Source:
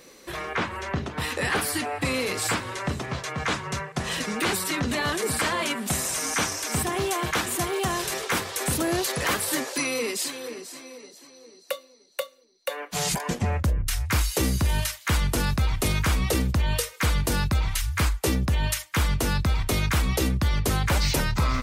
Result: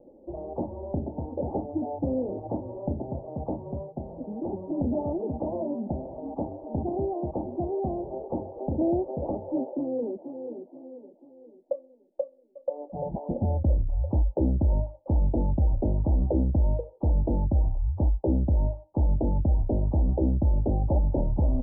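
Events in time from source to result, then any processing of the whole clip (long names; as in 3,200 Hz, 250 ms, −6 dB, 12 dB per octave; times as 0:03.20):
0:03.95–0:04.53: clip gain −4 dB
0:12.21–0:12.75: delay throw 340 ms, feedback 80%, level −7 dB
whole clip: Butterworth low-pass 820 Hz 72 dB per octave; comb filter 3.4 ms, depth 42%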